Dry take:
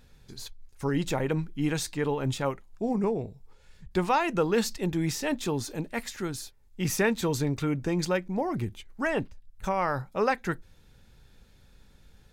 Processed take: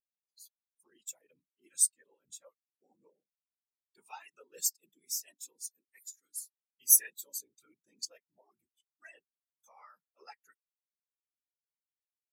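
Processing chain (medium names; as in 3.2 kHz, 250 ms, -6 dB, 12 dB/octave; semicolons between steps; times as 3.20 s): pre-emphasis filter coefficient 0.8; whisper effect; tilt EQ +4 dB/octave; spectral contrast expander 2.5:1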